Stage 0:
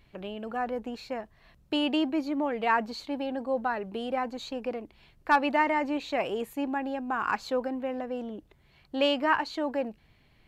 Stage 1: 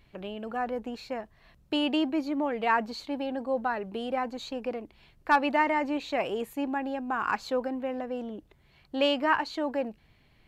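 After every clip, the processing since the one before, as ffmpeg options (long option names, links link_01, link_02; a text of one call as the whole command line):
ffmpeg -i in.wav -af anull out.wav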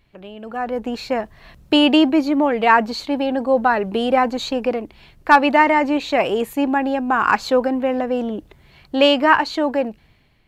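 ffmpeg -i in.wav -af "dynaudnorm=framelen=320:gausssize=5:maxgain=15dB" out.wav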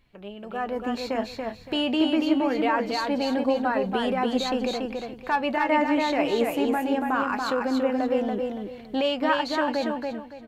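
ffmpeg -i in.wav -af "alimiter=limit=-12dB:level=0:latency=1:release=188,flanger=delay=3.7:depth=9.5:regen=59:speed=0.23:shape=triangular,aecho=1:1:283|566|849|1132:0.631|0.17|0.046|0.0124" out.wav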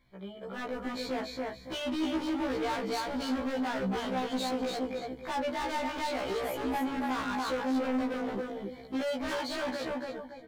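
ffmpeg -i in.wav -af "asuperstop=centerf=2700:order=12:qfactor=6,asoftclip=type=hard:threshold=-28.5dB,afftfilt=real='re*1.73*eq(mod(b,3),0)':imag='im*1.73*eq(mod(b,3),0)':win_size=2048:overlap=0.75" out.wav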